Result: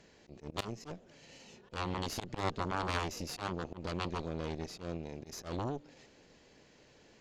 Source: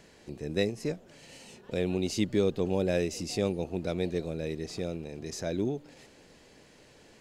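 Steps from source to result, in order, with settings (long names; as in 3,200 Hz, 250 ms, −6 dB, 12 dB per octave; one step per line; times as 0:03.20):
downsampling to 16,000 Hz
harmonic generator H 3 −7 dB, 5 −19 dB, 7 −19 dB, 8 −20 dB, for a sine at −13 dBFS
volume swells 111 ms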